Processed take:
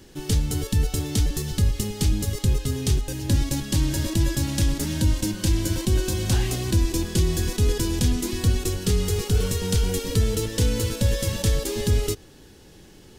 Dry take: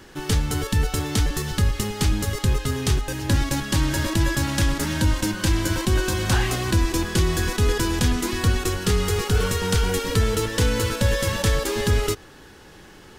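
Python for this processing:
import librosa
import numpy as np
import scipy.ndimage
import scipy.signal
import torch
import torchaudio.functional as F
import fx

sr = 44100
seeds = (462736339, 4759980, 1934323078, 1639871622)

y = fx.peak_eq(x, sr, hz=1300.0, db=-12.0, octaves=1.9)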